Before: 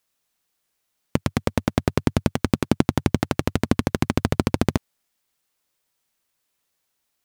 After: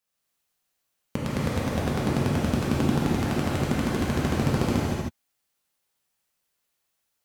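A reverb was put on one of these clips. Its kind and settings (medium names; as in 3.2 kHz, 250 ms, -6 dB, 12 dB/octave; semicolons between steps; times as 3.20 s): gated-style reverb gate 340 ms flat, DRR -7.5 dB; trim -10 dB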